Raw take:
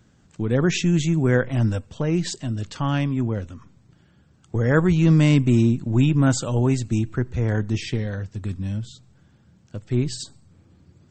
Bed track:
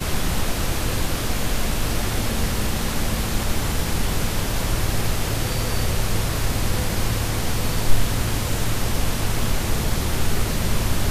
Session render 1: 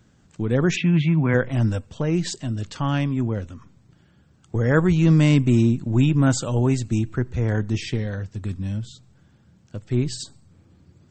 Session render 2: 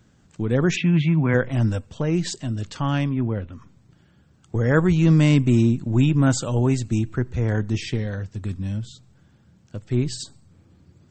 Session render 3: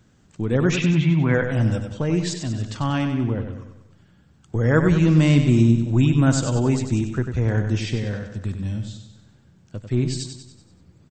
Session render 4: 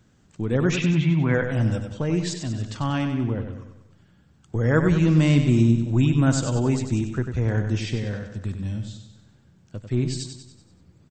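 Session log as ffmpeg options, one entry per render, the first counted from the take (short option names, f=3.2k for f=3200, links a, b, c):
-filter_complex "[0:a]asplit=3[a][b][c];[a]afade=t=out:st=0.75:d=0.02[d];[b]highpass=130,equalizer=f=150:t=q:w=4:g=6,equalizer=f=400:t=q:w=4:g=-9,equalizer=f=1k:t=q:w=4:g=8,equalizer=f=2.3k:t=q:w=4:g=7,lowpass=f=3.4k:w=0.5412,lowpass=f=3.4k:w=1.3066,afade=t=in:st=0.75:d=0.02,afade=t=out:st=1.33:d=0.02[e];[c]afade=t=in:st=1.33:d=0.02[f];[d][e][f]amix=inputs=3:normalize=0"
-filter_complex "[0:a]asplit=3[a][b][c];[a]afade=t=out:st=3.09:d=0.02[d];[b]lowpass=f=3.4k:w=0.5412,lowpass=f=3.4k:w=1.3066,afade=t=in:st=3.09:d=0.02,afade=t=out:st=3.52:d=0.02[e];[c]afade=t=in:st=3.52:d=0.02[f];[d][e][f]amix=inputs=3:normalize=0"
-af "aecho=1:1:95|190|285|380|475|570:0.422|0.211|0.105|0.0527|0.0264|0.0132"
-af "volume=-2dB"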